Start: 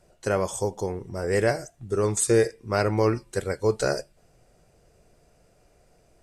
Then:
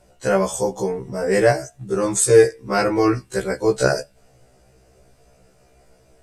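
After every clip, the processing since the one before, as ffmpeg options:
ffmpeg -i in.wav -af "afftfilt=real='re*1.73*eq(mod(b,3),0)':imag='im*1.73*eq(mod(b,3),0)':win_size=2048:overlap=0.75,volume=8dB" out.wav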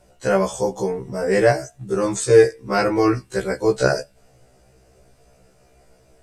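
ffmpeg -i in.wav -filter_complex "[0:a]acrossover=split=6800[link_01][link_02];[link_02]acompressor=threshold=-43dB:ratio=4:attack=1:release=60[link_03];[link_01][link_03]amix=inputs=2:normalize=0" out.wav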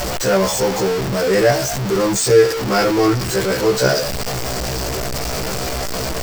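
ffmpeg -i in.wav -af "aeval=exprs='val(0)+0.5*0.168*sgn(val(0))':channel_layout=same,superequalizer=14b=1.58:16b=0.562,volume=-1dB" out.wav

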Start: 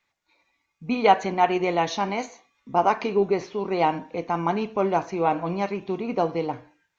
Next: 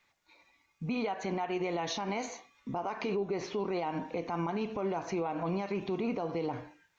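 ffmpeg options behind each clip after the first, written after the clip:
ffmpeg -i in.wav -af "acompressor=threshold=-26dB:ratio=12,alimiter=level_in=4.5dB:limit=-24dB:level=0:latency=1:release=82,volume=-4.5dB,volume=3.5dB" out.wav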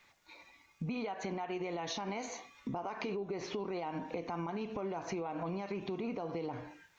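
ffmpeg -i in.wav -af "acompressor=threshold=-44dB:ratio=4,volume=6.5dB" out.wav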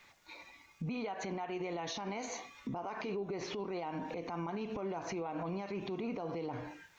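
ffmpeg -i in.wav -af "alimiter=level_in=11dB:limit=-24dB:level=0:latency=1:release=112,volume=-11dB,volume=4dB" out.wav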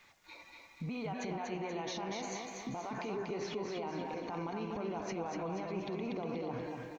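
ffmpeg -i in.wav -af "aecho=1:1:240|480|720|960|1200|1440:0.631|0.303|0.145|0.0698|0.0335|0.0161,volume=-1.5dB" out.wav

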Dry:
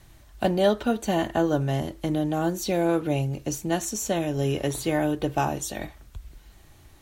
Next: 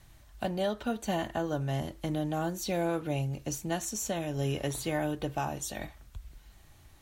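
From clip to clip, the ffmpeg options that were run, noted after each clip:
ffmpeg -i in.wav -af "equalizer=frequency=360:width_type=o:width=0.95:gain=-4.5,alimiter=limit=-17dB:level=0:latency=1:release=313,volume=-4dB" out.wav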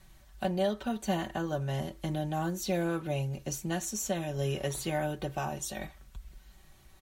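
ffmpeg -i in.wav -af "aecho=1:1:5.3:0.58,volume=-1.5dB" out.wav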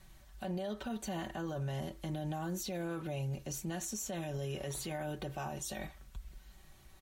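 ffmpeg -i in.wav -af "alimiter=level_in=6dB:limit=-24dB:level=0:latency=1:release=48,volume=-6dB,volume=-1dB" out.wav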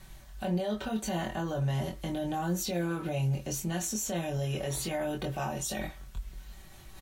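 ffmpeg -i in.wav -filter_complex "[0:a]areverse,acompressor=mode=upward:threshold=-50dB:ratio=2.5,areverse,asplit=2[link_01][link_02];[link_02]adelay=23,volume=-3.5dB[link_03];[link_01][link_03]amix=inputs=2:normalize=0,volume=5dB" out.wav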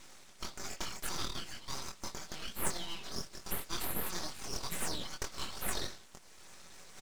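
ffmpeg -i in.wav -af "asuperpass=centerf=3000:order=8:qfactor=0.7,aeval=exprs='abs(val(0))':channel_layout=same,volume=9dB" out.wav

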